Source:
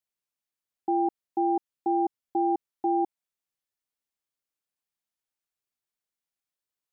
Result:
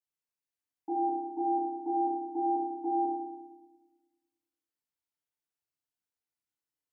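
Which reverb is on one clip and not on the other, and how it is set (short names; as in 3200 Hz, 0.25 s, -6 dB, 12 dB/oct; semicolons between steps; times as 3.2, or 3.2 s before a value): FDN reverb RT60 1.1 s, low-frequency decay 1.4×, high-frequency decay 0.65×, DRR -8 dB; gain -13 dB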